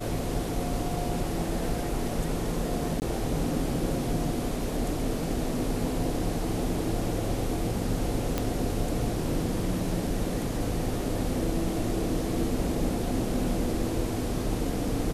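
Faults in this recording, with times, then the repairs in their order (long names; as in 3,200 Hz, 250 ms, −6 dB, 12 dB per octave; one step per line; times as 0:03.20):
0:03.00–0:03.02: drop-out 19 ms
0:08.38: click −12 dBFS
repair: click removal
repair the gap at 0:03.00, 19 ms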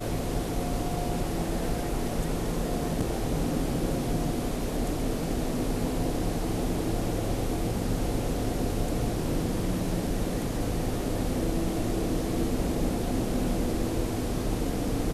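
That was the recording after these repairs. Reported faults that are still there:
none of them is left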